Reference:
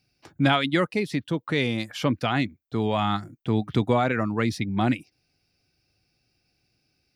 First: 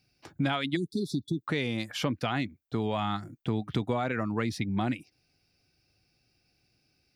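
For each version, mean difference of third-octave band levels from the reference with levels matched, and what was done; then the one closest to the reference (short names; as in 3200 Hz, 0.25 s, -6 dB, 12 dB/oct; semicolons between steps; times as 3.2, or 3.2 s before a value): 3.0 dB: spectral delete 0.76–1.47, 420–3400 Hz; compressor 3:1, threshold -27 dBFS, peak gain reduction 9 dB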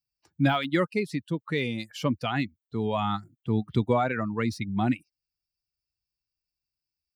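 4.0 dB: per-bin expansion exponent 1.5; de-esser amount 90%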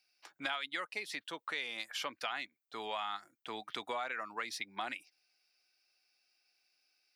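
9.5 dB: HPF 950 Hz 12 dB/oct; compressor 4:1, threshold -33 dBFS, peak gain reduction 11.5 dB; gain -2.5 dB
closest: first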